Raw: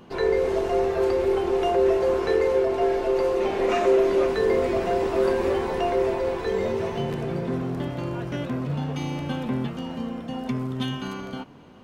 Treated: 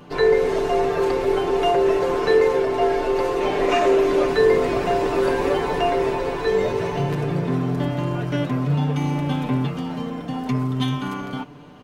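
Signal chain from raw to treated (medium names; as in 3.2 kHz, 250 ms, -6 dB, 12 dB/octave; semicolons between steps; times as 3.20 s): comb 6.8 ms, depth 66%; trim +3.5 dB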